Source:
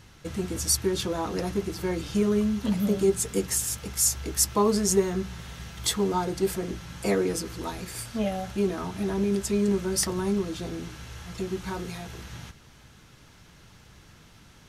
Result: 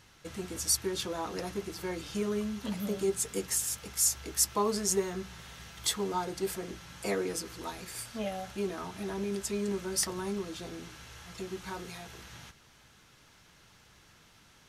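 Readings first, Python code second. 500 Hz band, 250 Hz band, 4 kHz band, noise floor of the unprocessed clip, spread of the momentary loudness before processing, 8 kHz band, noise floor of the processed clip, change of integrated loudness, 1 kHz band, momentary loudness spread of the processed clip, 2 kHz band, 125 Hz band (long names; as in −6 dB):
−7.0 dB, −9.5 dB, −3.5 dB, −53 dBFS, 14 LU, −3.5 dB, −60 dBFS, −6.0 dB, −4.5 dB, 16 LU, −4.0 dB, −10.5 dB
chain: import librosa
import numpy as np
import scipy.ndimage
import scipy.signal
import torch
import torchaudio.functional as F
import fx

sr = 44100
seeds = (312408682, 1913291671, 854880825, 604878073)

y = fx.low_shelf(x, sr, hz=350.0, db=-8.5)
y = F.gain(torch.from_numpy(y), -3.5).numpy()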